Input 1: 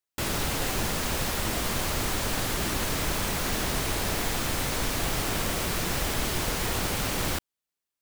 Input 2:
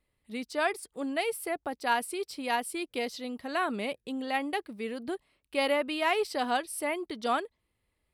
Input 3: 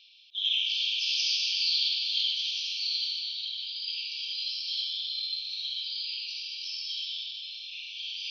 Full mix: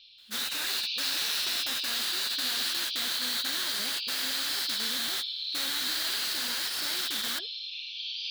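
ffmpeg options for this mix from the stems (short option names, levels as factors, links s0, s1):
-filter_complex "[0:a]highpass=f=1100:p=1,volume=0.316[s0];[1:a]firequalizer=gain_entry='entry(110,0);entry(390,-9);entry(780,-2);entry(1100,-10);entry(6100,0);entry(10000,-5)':delay=0.05:min_phase=1,asoftclip=type=tanh:threshold=0.0168,adynamicequalizer=threshold=0.00158:dfrequency=2200:dqfactor=0.7:tfrequency=2200:tqfactor=0.7:attack=5:release=100:ratio=0.375:range=2.5:mode=cutabove:tftype=highshelf,volume=0.473,asplit=2[s1][s2];[2:a]highshelf=f=2100:g=-7.5,volume=0.668[s3];[s2]apad=whole_len=353463[s4];[s0][s4]sidechaingate=range=0.0224:threshold=0.00178:ratio=16:detection=peak[s5];[s5][s1][s3]amix=inputs=3:normalize=0,highshelf=f=5300:g=8.5,afftfilt=real='re*lt(hypot(re,im),0.0447)':imag='im*lt(hypot(re,im),0.0447)':win_size=1024:overlap=0.75,equalizer=f=250:t=o:w=0.67:g=5,equalizer=f=1600:t=o:w=0.67:g=10,equalizer=f=4000:t=o:w=0.67:g=11"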